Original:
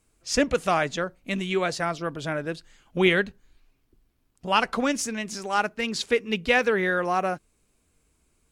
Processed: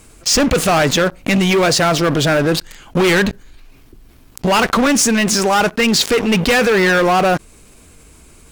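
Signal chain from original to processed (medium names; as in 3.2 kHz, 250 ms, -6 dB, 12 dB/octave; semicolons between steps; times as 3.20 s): waveshaping leveller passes 5; in parallel at +0.5 dB: peak limiter -16 dBFS, peak gain reduction 8.5 dB; on the sum: level flattener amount 50%; trim -5.5 dB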